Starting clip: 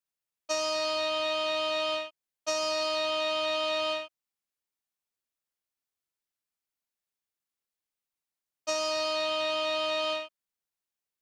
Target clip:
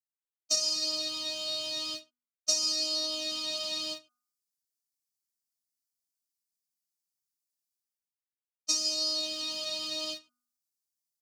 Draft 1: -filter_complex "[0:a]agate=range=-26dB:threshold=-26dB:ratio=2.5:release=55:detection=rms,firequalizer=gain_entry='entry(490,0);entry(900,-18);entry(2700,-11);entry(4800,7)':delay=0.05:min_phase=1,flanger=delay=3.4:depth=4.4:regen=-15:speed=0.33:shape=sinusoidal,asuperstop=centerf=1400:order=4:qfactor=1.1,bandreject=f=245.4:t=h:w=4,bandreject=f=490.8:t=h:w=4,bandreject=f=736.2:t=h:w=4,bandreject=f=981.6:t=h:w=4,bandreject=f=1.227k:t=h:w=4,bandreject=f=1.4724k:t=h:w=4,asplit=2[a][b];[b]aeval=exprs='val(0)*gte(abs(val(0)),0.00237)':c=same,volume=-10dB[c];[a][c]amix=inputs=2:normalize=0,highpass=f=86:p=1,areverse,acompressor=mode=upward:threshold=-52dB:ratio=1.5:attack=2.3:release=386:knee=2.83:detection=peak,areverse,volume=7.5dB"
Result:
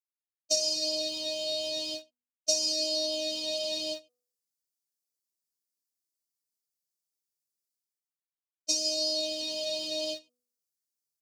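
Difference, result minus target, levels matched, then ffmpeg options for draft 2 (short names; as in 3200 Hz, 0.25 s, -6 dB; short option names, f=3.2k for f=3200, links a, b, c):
1000 Hz band -8.5 dB
-filter_complex "[0:a]agate=range=-26dB:threshold=-26dB:ratio=2.5:release=55:detection=rms,firequalizer=gain_entry='entry(490,0);entry(900,-18);entry(2700,-11);entry(4800,7)':delay=0.05:min_phase=1,flanger=delay=3.4:depth=4.4:regen=-15:speed=0.33:shape=sinusoidal,asuperstop=centerf=470:order=4:qfactor=1.1,bandreject=f=245.4:t=h:w=4,bandreject=f=490.8:t=h:w=4,bandreject=f=736.2:t=h:w=4,bandreject=f=981.6:t=h:w=4,bandreject=f=1.227k:t=h:w=4,bandreject=f=1.4724k:t=h:w=4,asplit=2[a][b];[b]aeval=exprs='val(0)*gte(abs(val(0)),0.00237)':c=same,volume=-10dB[c];[a][c]amix=inputs=2:normalize=0,highpass=f=86:p=1,areverse,acompressor=mode=upward:threshold=-52dB:ratio=1.5:attack=2.3:release=386:knee=2.83:detection=peak,areverse,volume=7.5dB"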